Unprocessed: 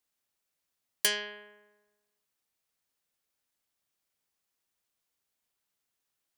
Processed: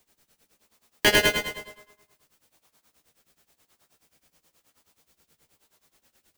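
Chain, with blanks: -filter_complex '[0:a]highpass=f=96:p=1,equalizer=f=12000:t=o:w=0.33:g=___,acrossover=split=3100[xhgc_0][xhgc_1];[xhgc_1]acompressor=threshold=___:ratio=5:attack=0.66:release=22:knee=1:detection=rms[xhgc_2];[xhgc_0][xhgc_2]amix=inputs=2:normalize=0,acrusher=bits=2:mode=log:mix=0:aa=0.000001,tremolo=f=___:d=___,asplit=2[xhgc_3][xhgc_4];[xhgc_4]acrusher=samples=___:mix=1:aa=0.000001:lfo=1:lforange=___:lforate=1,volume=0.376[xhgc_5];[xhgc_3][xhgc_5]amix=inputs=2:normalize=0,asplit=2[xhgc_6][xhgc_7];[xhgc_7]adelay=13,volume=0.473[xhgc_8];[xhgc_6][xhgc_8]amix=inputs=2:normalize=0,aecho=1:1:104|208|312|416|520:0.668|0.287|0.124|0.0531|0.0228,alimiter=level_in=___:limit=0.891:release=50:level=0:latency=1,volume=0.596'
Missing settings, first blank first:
-3.5, 0.00891, 9.4, 0.9, 28, 28, 13.3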